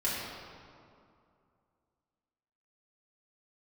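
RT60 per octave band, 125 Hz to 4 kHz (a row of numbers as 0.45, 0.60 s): 2.6, 2.7, 2.4, 2.4, 1.8, 1.4 s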